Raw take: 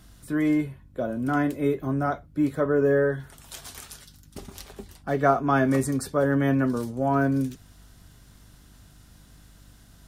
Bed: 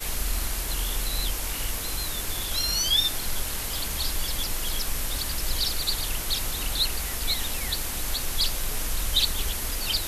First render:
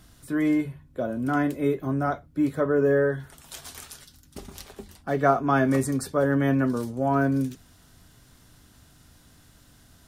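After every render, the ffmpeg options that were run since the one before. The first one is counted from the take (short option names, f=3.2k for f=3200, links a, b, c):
-af "bandreject=f=50:t=h:w=4,bandreject=f=100:t=h:w=4,bandreject=f=150:t=h:w=4,bandreject=f=200:t=h:w=4"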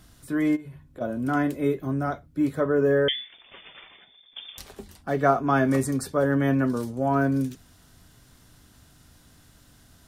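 -filter_complex "[0:a]asplit=3[a][b][c];[a]afade=t=out:st=0.55:d=0.02[d];[b]acompressor=threshold=-36dB:ratio=16:attack=3.2:release=140:knee=1:detection=peak,afade=t=in:st=0.55:d=0.02,afade=t=out:st=1:d=0.02[e];[c]afade=t=in:st=1:d=0.02[f];[d][e][f]amix=inputs=3:normalize=0,asettb=1/sr,asplit=3[g][h][i];[g]atrim=end=1.724[j];[h]atrim=start=1.72:end=2.41,asetpts=PTS-STARTPTS,afade=t=in:d=0.004:c=qsin,afade=t=out:st=0.686:d=0.004:c=qsin,equalizer=f=880:t=o:w=2.1:g=-3[k];[i]atrim=start=2.406[l];[j][k]acrossfade=d=0.004:c1=hsin:c2=qsin[m];[m][l]acrossfade=d=0.004:c1=qsin:c2=hsin,asettb=1/sr,asplit=3[n][o][p];[n]atrim=end=3.084[q];[o]atrim=start=3.08:end=4.58,asetpts=PTS-STARTPTS,afade=t=in:d=0.004:c=qsin,afade=t=out:st=1.496:d=0.004:c=qsin,lowpass=f=3.1k:t=q:w=0.5098,lowpass=f=3.1k:t=q:w=0.6013,lowpass=f=3.1k:t=q:w=0.9,lowpass=f=3.1k:t=q:w=2.563,afreqshift=-3600[r];[p]atrim=start=4.576[s];[q][r]acrossfade=d=0.004:c1=hsin:c2=qsin[t];[t][s]acrossfade=d=0.004:c1=qsin:c2=hsin"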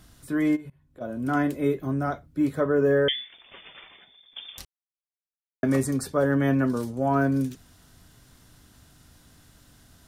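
-filter_complex "[0:a]asplit=4[a][b][c][d];[a]atrim=end=0.7,asetpts=PTS-STARTPTS,afade=t=out:st=0.696:d=0.004:c=hsin:silence=0.0891251[e];[b]atrim=start=0.7:end=4.65,asetpts=PTS-STARTPTS,afade=t=in:d=0.64:silence=0.0891251,afade=t=out:st=3.946:d=0.004:c=hsin[f];[c]atrim=start=4.65:end=5.63,asetpts=PTS-STARTPTS,volume=0[g];[d]atrim=start=5.63,asetpts=PTS-STARTPTS,afade=t=in:d=0.004:c=hsin[h];[e][f][g][h]concat=n=4:v=0:a=1"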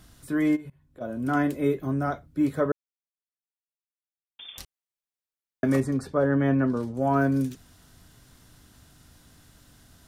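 -filter_complex "[0:a]asettb=1/sr,asplit=3[a][b][c];[a]atrim=end=5.804[d];[b]atrim=start=5.8:end=6.95,asetpts=PTS-STARTPTS,afade=t=in:d=0.004:c=qsin,afade=t=out:st=1.146:d=0.004:c=qsin,aemphasis=mode=reproduction:type=75kf[e];[c]atrim=start=6.946[f];[d][e]acrossfade=d=0.004:c1=hsin:c2=qsin[g];[g][f]acrossfade=d=0.004:c1=qsin:c2=hsin,asplit=3[h][i][j];[h]atrim=end=2.72,asetpts=PTS-STARTPTS,afade=t=out:st=2.716:d=0.004:c=hsin[k];[i]atrim=start=2.72:end=4.39,asetpts=PTS-STARTPTS,volume=0[l];[j]atrim=start=4.39,asetpts=PTS-STARTPTS,afade=t=in:d=0.004:c=hsin[m];[k][l][m]concat=n=3:v=0:a=1"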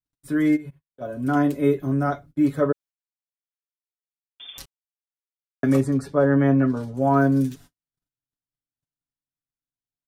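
-af "agate=range=-48dB:threshold=-47dB:ratio=16:detection=peak,aecho=1:1:7.1:0.73"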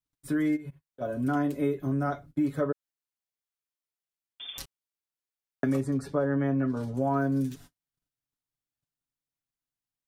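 -af "acompressor=threshold=-26dB:ratio=3"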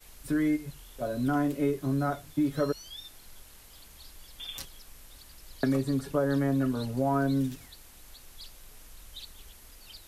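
-filter_complex "[1:a]volume=-22dB[a];[0:a][a]amix=inputs=2:normalize=0"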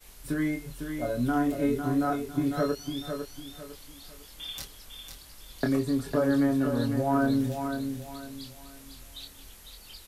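-filter_complex "[0:a]asplit=2[a][b];[b]adelay=25,volume=-5dB[c];[a][c]amix=inputs=2:normalize=0,aecho=1:1:502|1004|1506|2008:0.447|0.143|0.0457|0.0146"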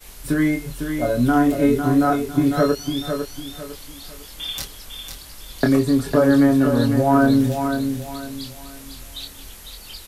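-af "volume=9.5dB"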